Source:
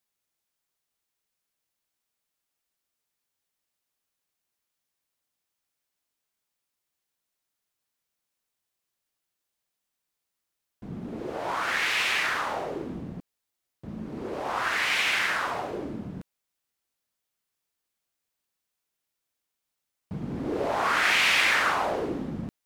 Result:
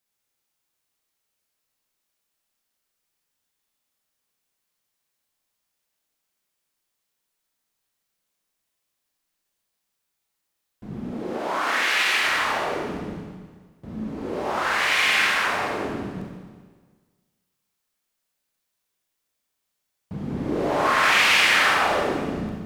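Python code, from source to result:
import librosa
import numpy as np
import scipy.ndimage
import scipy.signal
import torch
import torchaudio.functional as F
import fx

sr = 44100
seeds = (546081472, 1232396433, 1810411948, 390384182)

y = fx.highpass(x, sr, hz=210.0, slope=24, at=(11.14, 12.24))
y = fx.rev_schroeder(y, sr, rt60_s=1.5, comb_ms=29, drr_db=-1.5)
y = y * 10.0 ** (1.0 / 20.0)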